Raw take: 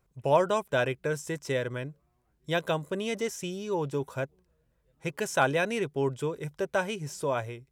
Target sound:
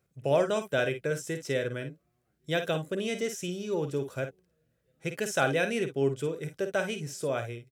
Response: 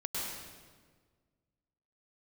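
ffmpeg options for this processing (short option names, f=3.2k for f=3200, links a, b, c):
-filter_complex "[0:a]highpass=97,equalizer=f=970:w=3.7:g=-13.5,asplit=2[a][b];[b]aecho=0:1:51|61:0.355|0.141[c];[a][c]amix=inputs=2:normalize=0"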